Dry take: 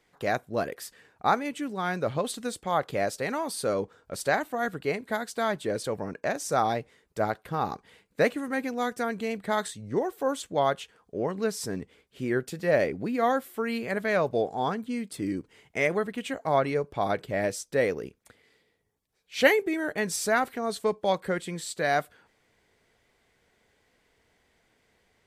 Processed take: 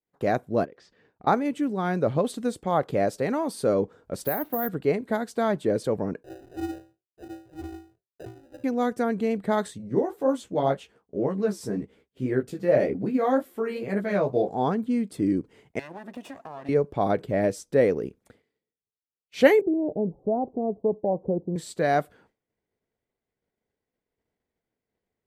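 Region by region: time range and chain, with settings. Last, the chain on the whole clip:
0.65–1.27 LPF 5500 Hz 24 dB/oct + compressor 8:1, threshold -48 dBFS
4.24–4.69 air absorption 82 m + compressor 4:1, threshold -27 dBFS + careless resampling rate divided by 3×, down filtered, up zero stuff
6.23–8.64 LPF 6800 Hz + metallic resonator 380 Hz, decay 0.42 s, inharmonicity 0.008 + sample-rate reducer 1100 Hz
9.78–14.5 doubler 15 ms -3 dB + flange 1.9 Hz, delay 3.5 ms, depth 8.8 ms, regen -59%
15.79–16.69 minimum comb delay 1.1 ms + HPF 240 Hz + compressor, threshold -39 dBFS
19.61–21.56 steep low-pass 840 Hz 48 dB/oct + compressor 1.5:1, threshold -30 dBFS
whole clip: tilt shelf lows +8.5 dB, about 680 Hz; expander -52 dBFS; low shelf 150 Hz -10 dB; gain +3.5 dB

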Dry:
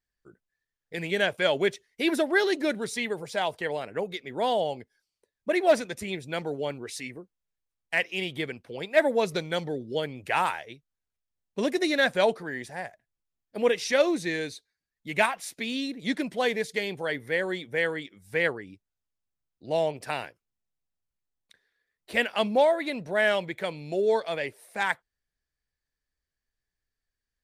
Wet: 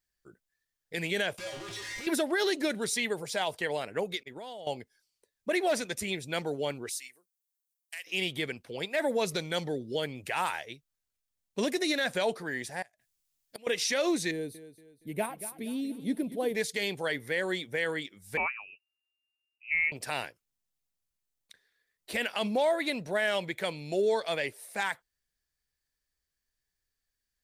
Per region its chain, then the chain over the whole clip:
1.38–2.07 infinite clipping + air absorption 71 m + resonator 110 Hz, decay 0.4 s, harmonics odd, mix 90%
4.23–4.67 expander -35 dBFS + compressor 16:1, threshold -38 dBFS
6.89–8.07 differentiator + compressor 3:1, threshold -38 dBFS
12.82–13.67 high shelf 2100 Hz +9.5 dB + flipped gate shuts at -28 dBFS, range -25 dB
14.31–16.55 EQ curve 420 Hz 0 dB, 1700 Hz -17 dB, 3100 Hz -17 dB, 6900 Hz -21 dB, 10000 Hz -2 dB + feedback echo 0.234 s, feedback 40%, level -14 dB
18.37–19.92 inverted band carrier 2800 Hz + upward expander, over -34 dBFS
whole clip: high shelf 3300 Hz +8.5 dB; limiter -18 dBFS; gain -1.5 dB

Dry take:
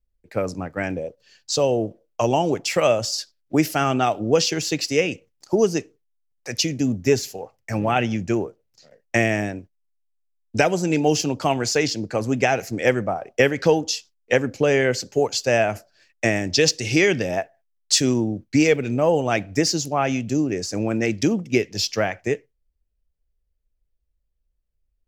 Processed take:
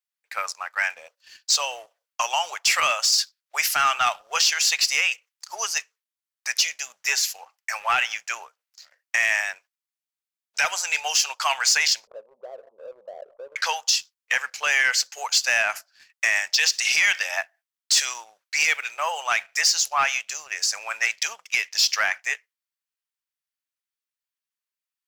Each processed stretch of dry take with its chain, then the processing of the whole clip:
12.07–13.56 steep low-pass 570 Hz 72 dB/oct + fast leveller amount 70%
whole clip: inverse Chebyshev high-pass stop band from 310 Hz, stop band 60 dB; limiter -15 dBFS; sample leveller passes 1; gain +4.5 dB

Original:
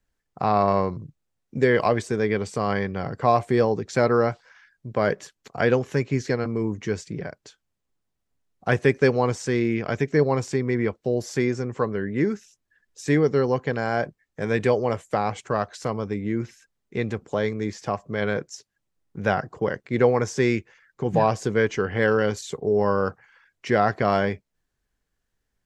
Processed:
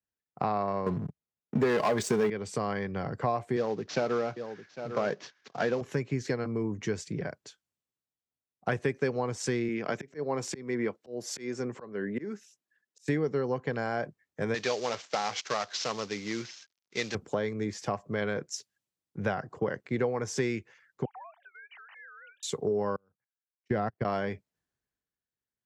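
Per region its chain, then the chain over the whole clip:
0.86–2.3 sample leveller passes 3 + comb 4.8 ms, depth 33%
3.56–5.81 CVSD 32 kbps + HPF 130 Hz + echo 0.802 s -14.5 dB
9.68–13.08 HPF 170 Hz + auto swell 0.294 s
14.54–17.15 CVSD 32 kbps + tilt +3.5 dB/oct
21.05–22.43 sine-wave speech + steep high-pass 730 Hz 48 dB/oct + compressor, threshold -42 dBFS
22.96–24.05 low shelf 320 Hz +9 dB + level quantiser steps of 18 dB + upward expander 2.5:1, over -37 dBFS
whole clip: compressor 6:1, threshold -26 dBFS; HPF 93 Hz; three-band expander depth 40%

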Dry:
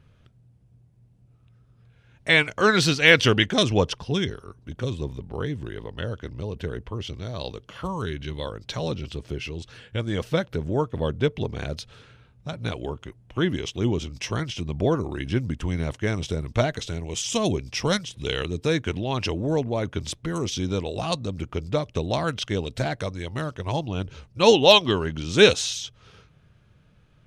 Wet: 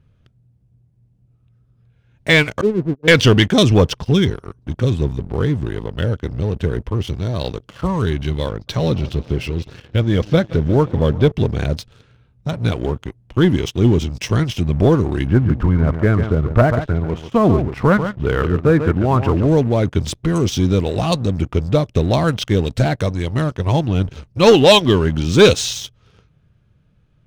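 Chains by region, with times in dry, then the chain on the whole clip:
2.61–3.08 expander -18 dBFS + ladder low-pass 480 Hz, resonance 40%
8.49–11.32 steep low-pass 6300 Hz + warbling echo 0.178 s, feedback 68%, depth 149 cents, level -19 dB
15.27–19.47 synth low-pass 1300 Hz, resonance Q 2.3 + echo 0.14 s -10 dB
whole clip: low shelf 410 Hz +7.5 dB; sample leveller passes 2; gain -2 dB

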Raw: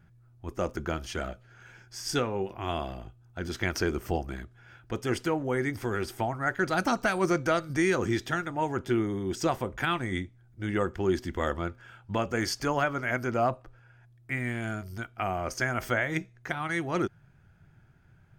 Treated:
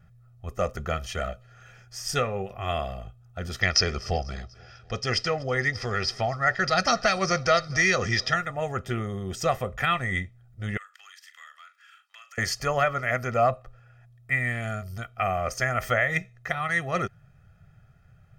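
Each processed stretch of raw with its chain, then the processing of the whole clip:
3.61–8.34 synth low-pass 5100 Hz, resonance Q 6.8 + feedback echo 0.245 s, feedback 54%, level -23.5 dB
10.77–12.38 HPF 1500 Hz 24 dB/oct + compressor 4:1, threshold -49 dBFS + doubler 41 ms -10.5 dB
whole clip: comb 1.6 ms, depth 82%; dynamic EQ 2000 Hz, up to +6 dB, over -42 dBFS, Q 2

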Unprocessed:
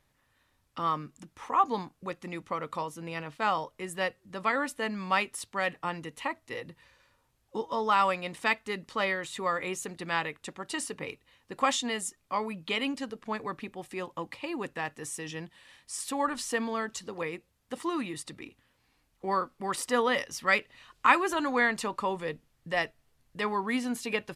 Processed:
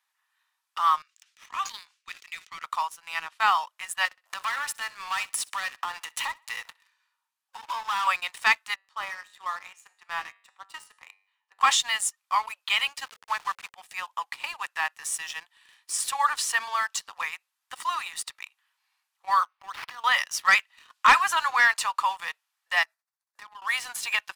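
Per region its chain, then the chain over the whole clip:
1.02–2.64 Butterworth band-pass 3900 Hz, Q 0.76 + sustainer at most 130 dB/s
4.05–8.07 sample leveller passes 3 + compressor 8:1, threshold -34 dBFS + feedback echo 63 ms, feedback 42%, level -16 dB
8.74–11.61 tilt -3 dB/oct + resonator 97 Hz, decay 0.57 s, mix 70%
13.04–13.74 level-crossing sampler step -40 dBFS + LPF 6800 Hz + notches 60/120/180/240/300/360/420/480/540 Hz
19.43–20.04 compressor 20:1, threshold -36 dBFS + decimation joined by straight lines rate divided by 6×
22.83–23.62 expander -60 dBFS + bell 3000 Hz -11.5 dB 0.45 oct + compressor 12:1, threshold -42 dBFS
whole clip: steep high-pass 860 Hz 36 dB/oct; notch 2100 Hz, Q 28; sample leveller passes 2; gain +1 dB

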